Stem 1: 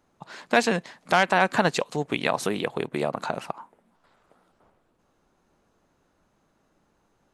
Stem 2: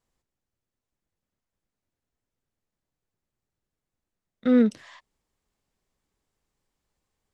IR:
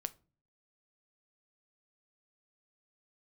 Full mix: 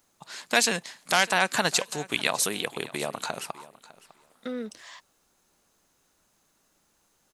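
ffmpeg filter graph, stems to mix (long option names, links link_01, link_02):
-filter_complex "[0:a]crystalizer=i=7:c=0,volume=-7dB,asplit=3[link_01][link_02][link_03];[link_02]volume=-19.5dB[link_04];[1:a]acompressor=threshold=-25dB:ratio=6,bass=frequency=250:gain=-13,treble=frequency=4000:gain=9,volume=1.5dB[link_05];[link_03]apad=whole_len=323350[link_06];[link_05][link_06]sidechaincompress=threshold=-47dB:ratio=8:attack=16:release=850[link_07];[link_04]aecho=0:1:603|1206|1809:1|0.17|0.0289[link_08];[link_01][link_07][link_08]amix=inputs=3:normalize=0"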